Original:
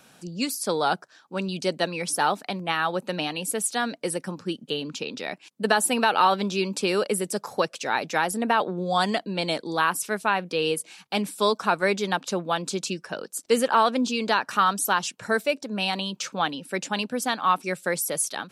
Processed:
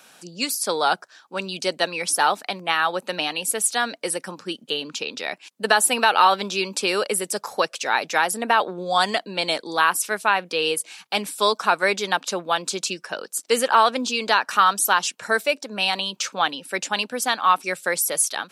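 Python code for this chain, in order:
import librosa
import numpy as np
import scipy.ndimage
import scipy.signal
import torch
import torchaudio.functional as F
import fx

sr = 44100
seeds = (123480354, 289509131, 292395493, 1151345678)

y = fx.highpass(x, sr, hz=680.0, slope=6)
y = y * librosa.db_to_amplitude(5.5)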